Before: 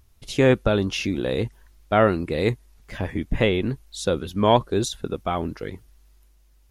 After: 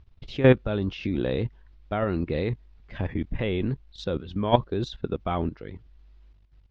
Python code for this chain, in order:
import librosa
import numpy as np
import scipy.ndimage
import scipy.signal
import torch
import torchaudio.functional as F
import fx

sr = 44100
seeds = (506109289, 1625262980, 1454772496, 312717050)

y = scipy.signal.sosfilt(scipy.signal.butter(4, 4100.0, 'lowpass', fs=sr, output='sos'), x)
y = fx.low_shelf(y, sr, hz=260.0, db=5.5)
y = fx.level_steps(y, sr, step_db=13)